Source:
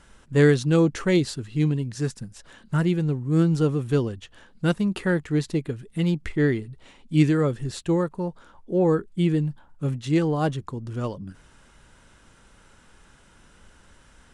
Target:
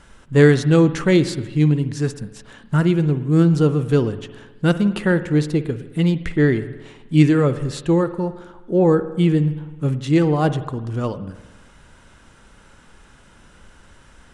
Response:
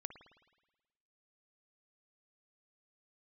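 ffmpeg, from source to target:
-filter_complex "[0:a]asplit=2[s0][s1];[s1]highshelf=f=5600:g=-6.5[s2];[1:a]atrim=start_sample=2205[s3];[s2][s3]afir=irnorm=-1:irlink=0,volume=2.66[s4];[s0][s4]amix=inputs=2:normalize=0,volume=0.708"

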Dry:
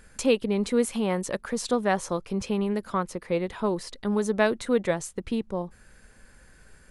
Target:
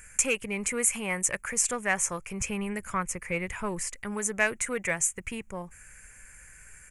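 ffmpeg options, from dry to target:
-filter_complex "[0:a]asettb=1/sr,asplit=3[s0][s1][s2];[s0]atrim=end=2.404[s3];[s1]atrim=start=2.4:end=3.88,asetpts=PTS-STARTPTS,afade=t=in:d=0.004:c=qsin,afade=t=out:st=1.476:d=0.004:c=qsin,lowshelf=f=170:g=7.5[s4];[s2]atrim=start=3.876[s5];[s3][s4]acrossfade=d=0.004:c1=hsin:c2=qsin[s6];[s6][s5]acrossfade=d=0.004:c1=qsin:c2=hsin,asoftclip=type=tanh:threshold=0.282,firequalizer=gain_entry='entry(120,0);entry(230,-10);entry(2300,12);entry(3800,-13);entry(6900,15);entry(10000,11)':delay=0.05:min_phase=1,volume=0.891"

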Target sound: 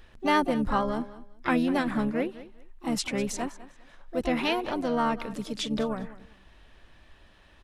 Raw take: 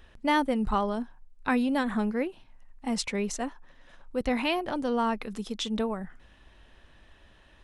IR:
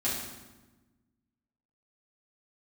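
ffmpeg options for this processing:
-filter_complex "[0:a]aecho=1:1:200|400:0.141|0.0311,asplit=3[s0][s1][s2];[s1]asetrate=29433,aresample=44100,atempo=1.49831,volume=0.2[s3];[s2]asetrate=58866,aresample=44100,atempo=0.749154,volume=0.355[s4];[s0][s3][s4]amix=inputs=3:normalize=0"

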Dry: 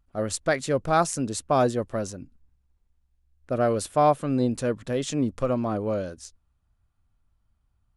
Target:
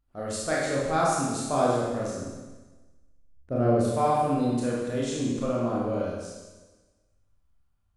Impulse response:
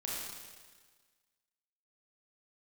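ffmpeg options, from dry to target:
-filter_complex "[0:a]asettb=1/sr,asplit=3[s0][s1][s2];[s0]atrim=end=2.174[s3];[s1]atrim=start=2.17:end=3.85,asetpts=PTS-STARTPTS,afade=t=in:d=0.004:c=qsin,afade=t=out:st=1.676:d=0.004:c=qsin,tiltshelf=f=820:g=6.5[s4];[s2]atrim=start=3.846[s5];[s3][s4]acrossfade=d=0.004:c1=hsin:c2=qsin[s6];[s6][s5]acrossfade=d=0.004:c1=qsin:c2=hsin[s7];[1:a]atrim=start_sample=2205,asetrate=52920,aresample=44100[s8];[s7][s8]afir=irnorm=-1:irlink=0,volume=0.794"

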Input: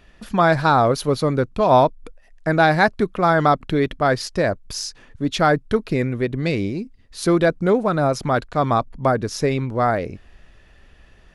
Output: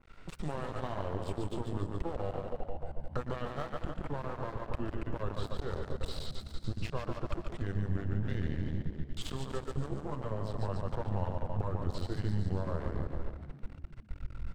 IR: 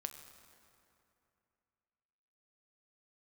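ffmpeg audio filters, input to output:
-filter_complex "[0:a]acompressor=threshold=0.0562:ratio=4,asplit=2[s0][s1];[s1]adelay=16,volume=0.473[s2];[s0][s2]amix=inputs=2:normalize=0,asplit=2[s3][s4];[1:a]atrim=start_sample=2205,asetrate=33075,aresample=44100[s5];[s4][s5]afir=irnorm=-1:irlink=0,volume=0.447[s6];[s3][s6]amix=inputs=2:normalize=0,asetrate=34398,aresample=44100,asubboost=boost=11:cutoff=64,asplit=2[s7][s8];[s8]aecho=0:1:143|286|429|572|715|858|1001:0.531|0.292|0.161|0.0883|0.0486|0.0267|0.0147[s9];[s7][s9]amix=inputs=2:normalize=0,acrossover=split=110|3400[s10][s11][s12];[s10]acompressor=threshold=0.0631:ratio=4[s13];[s11]acompressor=threshold=0.0447:ratio=4[s14];[s12]acompressor=threshold=0.00794:ratio=4[s15];[s13][s14][s15]amix=inputs=3:normalize=0,aeval=exprs='max(val(0),0)':c=same,asplit=6[s16][s17][s18][s19][s20][s21];[s17]adelay=122,afreqshift=68,volume=0.2[s22];[s18]adelay=244,afreqshift=136,volume=0.102[s23];[s19]adelay=366,afreqshift=204,volume=0.0519[s24];[s20]adelay=488,afreqshift=272,volume=0.0266[s25];[s21]adelay=610,afreqshift=340,volume=0.0135[s26];[s16][s22][s23][s24][s25][s26]amix=inputs=6:normalize=0,adynamicequalizer=threshold=0.00316:dfrequency=1600:dqfactor=0.7:tfrequency=1600:tqfactor=0.7:attack=5:release=100:ratio=0.375:range=3:mode=cutabove:tftype=highshelf,volume=0.501"

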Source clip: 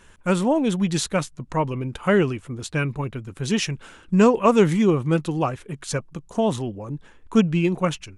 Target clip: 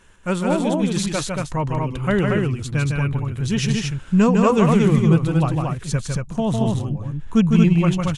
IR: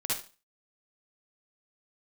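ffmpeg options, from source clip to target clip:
-af "asubboost=boost=4.5:cutoff=160,aecho=1:1:154.5|230.3:0.631|0.708,volume=0.841"

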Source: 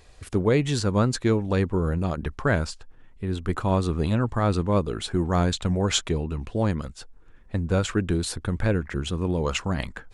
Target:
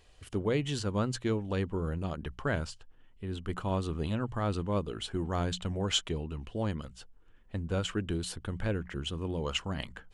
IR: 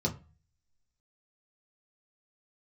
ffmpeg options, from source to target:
-af "equalizer=f=3000:w=7.9:g=11,bandreject=f=60:t=h:w=6,bandreject=f=120:t=h:w=6,bandreject=f=180:t=h:w=6,volume=0.376"

